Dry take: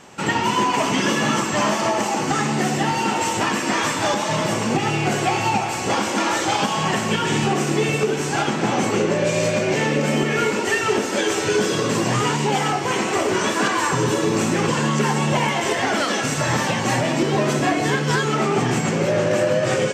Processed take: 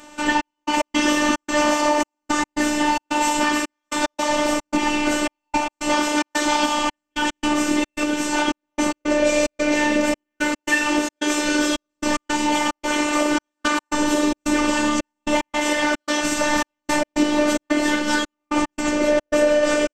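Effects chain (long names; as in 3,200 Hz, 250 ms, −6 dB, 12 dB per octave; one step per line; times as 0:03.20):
gate pattern "xxx..x.xxx.x" 111 BPM −60 dB
phases set to zero 298 Hz
level +3.5 dB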